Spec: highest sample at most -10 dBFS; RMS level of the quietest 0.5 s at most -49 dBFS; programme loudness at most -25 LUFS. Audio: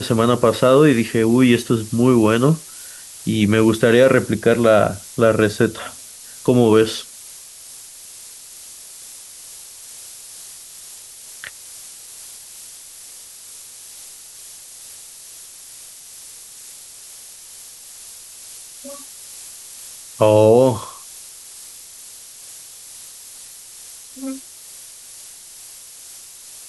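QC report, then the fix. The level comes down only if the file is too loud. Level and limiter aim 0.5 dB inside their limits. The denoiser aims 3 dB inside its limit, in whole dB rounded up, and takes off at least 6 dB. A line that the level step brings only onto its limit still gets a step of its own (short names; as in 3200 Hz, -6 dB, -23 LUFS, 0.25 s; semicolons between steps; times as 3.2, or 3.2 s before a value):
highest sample -2.5 dBFS: fail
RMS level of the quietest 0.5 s -40 dBFS: fail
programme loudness -16.0 LUFS: fail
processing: gain -9.5 dB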